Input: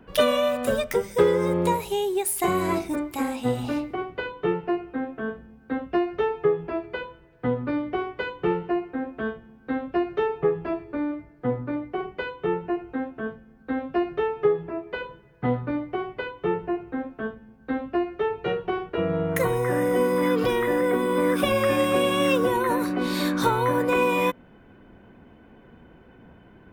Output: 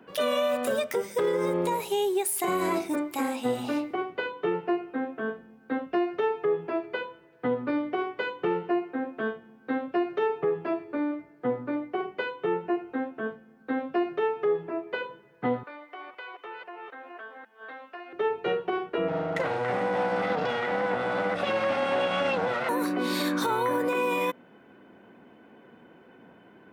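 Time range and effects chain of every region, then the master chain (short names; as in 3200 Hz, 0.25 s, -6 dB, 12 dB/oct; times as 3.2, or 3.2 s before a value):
15.63–18.13 reverse delay 0.26 s, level -5 dB + HPF 870 Hz + compressor 2.5:1, threshold -40 dBFS
19.08–22.69 minimum comb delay 1.5 ms + air absorption 140 m
whole clip: HPF 230 Hz 12 dB/oct; limiter -18 dBFS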